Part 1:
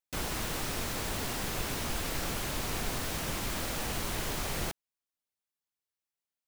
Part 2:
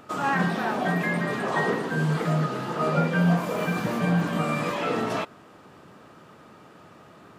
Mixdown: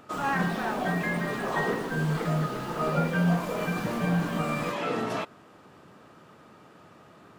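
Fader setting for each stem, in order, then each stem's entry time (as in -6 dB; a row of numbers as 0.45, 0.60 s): -15.0, -3.0 dB; 0.00, 0.00 s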